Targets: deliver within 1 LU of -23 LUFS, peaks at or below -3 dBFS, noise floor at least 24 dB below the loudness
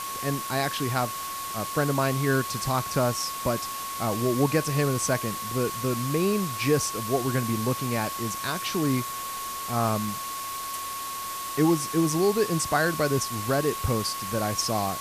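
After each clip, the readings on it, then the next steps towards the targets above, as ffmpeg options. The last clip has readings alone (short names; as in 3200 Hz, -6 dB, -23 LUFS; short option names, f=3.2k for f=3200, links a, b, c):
steady tone 1100 Hz; tone level -33 dBFS; noise floor -34 dBFS; noise floor target -51 dBFS; loudness -26.5 LUFS; peak -10.0 dBFS; loudness target -23.0 LUFS
-> -af "bandreject=f=1.1k:w=30"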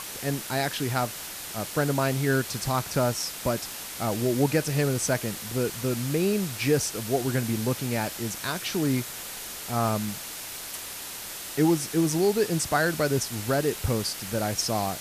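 steady tone none; noise floor -38 dBFS; noise floor target -51 dBFS
-> -af "afftdn=nr=13:nf=-38"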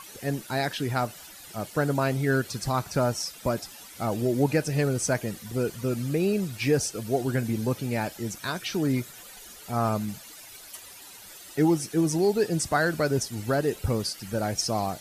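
noise floor -46 dBFS; noise floor target -52 dBFS
-> -af "afftdn=nr=6:nf=-46"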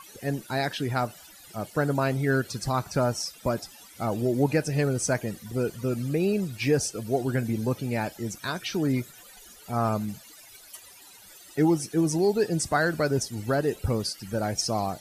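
noise floor -50 dBFS; noise floor target -52 dBFS
-> -af "afftdn=nr=6:nf=-50"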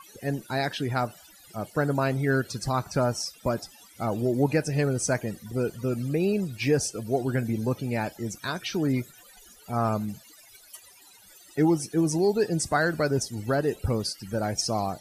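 noise floor -53 dBFS; loudness -27.5 LUFS; peak -11.5 dBFS; loudness target -23.0 LUFS
-> -af "volume=4.5dB"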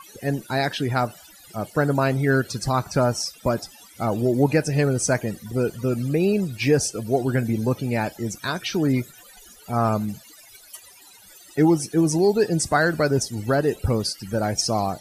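loudness -23.0 LUFS; peak -7.0 dBFS; noise floor -49 dBFS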